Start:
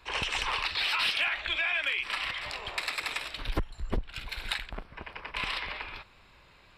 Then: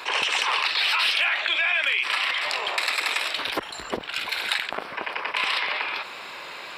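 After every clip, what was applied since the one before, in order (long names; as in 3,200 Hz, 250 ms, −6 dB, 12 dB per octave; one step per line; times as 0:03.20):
high-pass filter 410 Hz 12 dB per octave
envelope flattener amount 50%
level +5 dB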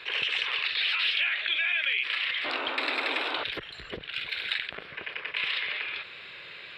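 drawn EQ curve 150 Hz 0 dB, 240 Hz −12 dB, 450 Hz −7 dB, 900 Hz −20 dB, 1,700 Hz −5 dB, 3,600 Hz −3 dB, 6,000 Hz −21 dB, 12,000 Hz −23 dB
sound drawn into the spectrogram noise, 0:02.44–0:03.44, 250–1,600 Hz −35 dBFS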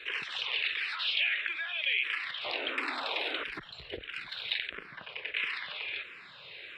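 frequency shifter mixed with the dry sound −1.5 Hz
level −1 dB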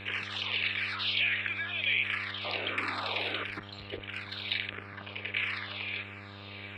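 hum with harmonics 100 Hz, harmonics 28, −48 dBFS −5 dB per octave
hollow resonant body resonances 1,200/2,300 Hz, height 6 dB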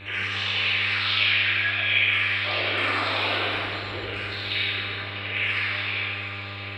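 dense smooth reverb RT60 2.8 s, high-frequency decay 0.8×, DRR −8.5 dB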